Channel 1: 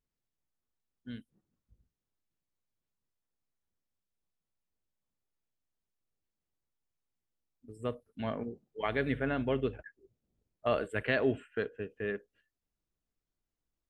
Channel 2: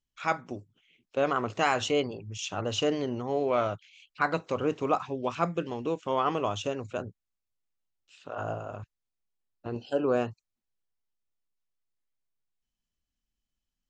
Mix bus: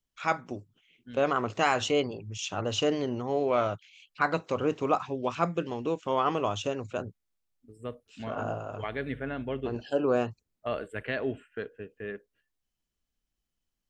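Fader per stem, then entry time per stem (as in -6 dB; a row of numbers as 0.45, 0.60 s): -2.5, +0.5 dB; 0.00, 0.00 s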